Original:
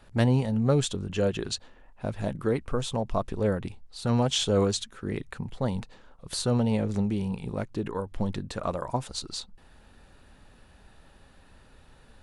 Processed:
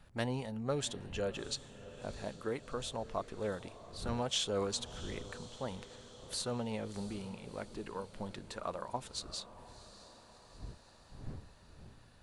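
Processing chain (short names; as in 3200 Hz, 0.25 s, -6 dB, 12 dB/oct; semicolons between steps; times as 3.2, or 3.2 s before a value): wind noise 87 Hz -36 dBFS; low shelf 320 Hz -11.5 dB; diffused feedback echo 0.682 s, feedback 59%, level -15 dB; gain -6.5 dB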